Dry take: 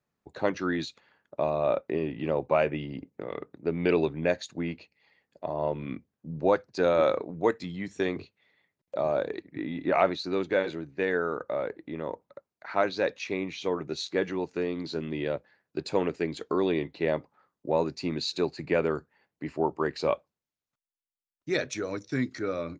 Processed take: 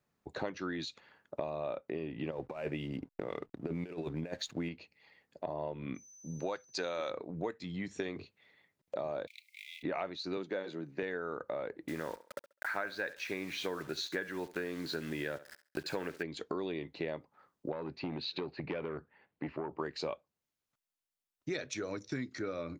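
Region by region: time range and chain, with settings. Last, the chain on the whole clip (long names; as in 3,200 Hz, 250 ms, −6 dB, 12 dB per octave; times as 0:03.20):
0:02.31–0:04.69: compressor whose output falls as the input rises −29 dBFS, ratio −0.5 + slack as between gear wheels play −51.5 dBFS
0:05.94–0:07.09: spectral tilt +2.5 dB per octave + steady tone 6,100 Hz −56 dBFS
0:09.27–0:09.83: mu-law and A-law mismatch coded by mu + Chebyshev high-pass filter 2,100 Hz, order 10
0:10.37–0:11.03: high-pass filter 130 Hz 24 dB per octave + dynamic equaliser 2,400 Hz, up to −6 dB, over −48 dBFS, Q 1.9
0:11.88–0:16.23: parametric band 1,600 Hz +14 dB 0.45 octaves + bit-depth reduction 8 bits, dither none + feedback echo with a high-pass in the loop 68 ms, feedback 23%, high-pass 230 Hz, level −17 dB
0:17.72–0:19.79: low-pass filter 3,500 Hz 24 dB per octave + downward compressor 3 to 1, threshold −26 dBFS + saturating transformer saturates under 710 Hz
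whole clip: dynamic equaliser 3,700 Hz, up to +3 dB, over −43 dBFS, Q 0.83; downward compressor 6 to 1, threshold −37 dBFS; level +2 dB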